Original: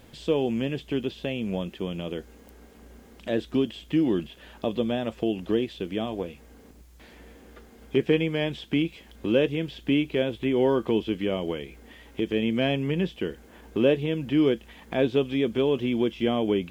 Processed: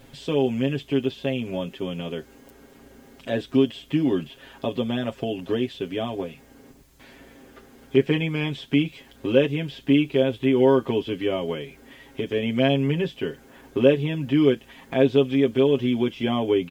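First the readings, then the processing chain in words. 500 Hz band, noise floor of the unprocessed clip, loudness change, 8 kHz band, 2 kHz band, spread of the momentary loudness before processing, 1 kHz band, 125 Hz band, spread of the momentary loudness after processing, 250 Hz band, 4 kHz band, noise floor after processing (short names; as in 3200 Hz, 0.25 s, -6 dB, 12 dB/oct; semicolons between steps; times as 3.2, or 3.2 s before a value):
+3.5 dB, -52 dBFS, +3.0 dB, n/a, +2.5 dB, 10 LU, +3.0 dB, +4.5 dB, 13 LU, +2.5 dB, +2.5 dB, -52 dBFS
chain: comb 7.4 ms, depth 89%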